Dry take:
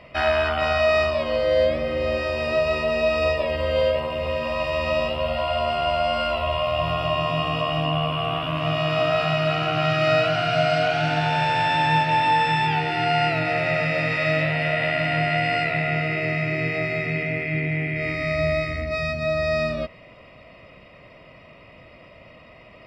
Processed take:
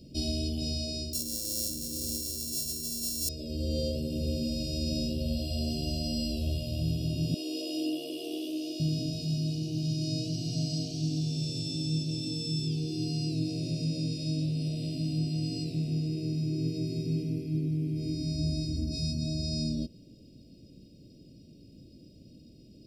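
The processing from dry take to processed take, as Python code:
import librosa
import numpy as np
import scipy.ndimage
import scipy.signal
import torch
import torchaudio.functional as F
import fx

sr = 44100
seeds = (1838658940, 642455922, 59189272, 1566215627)

y = fx.sample_sort(x, sr, block=32, at=(1.13, 3.29))
y = fx.ellip_highpass(y, sr, hz=320.0, order=4, stop_db=40, at=(7.34, 8.8))
y = scipy.signal.sosfilt(scipy.signal.ellip(3, 1.0, 60, [310.0, 5300.0], 'bandstop', fs=sr, output='sos'), y)
y = fx.low_shelf(y, sr, hz=200.0, db=-10.5)
y = fx.rider(y, sr, range_db=10, speed_s=0.5)
y = F.gain(torch.from_numpy(y), 3.5).numpy()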